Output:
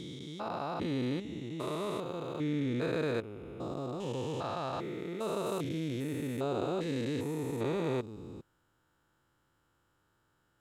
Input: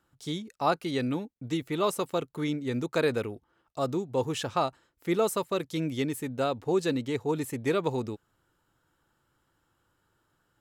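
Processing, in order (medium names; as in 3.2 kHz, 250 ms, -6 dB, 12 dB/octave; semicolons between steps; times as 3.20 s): spectrogram pixelated in time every 400 ms; treble shelf 9 kHz -10 dB, from 5.46 s -3 dB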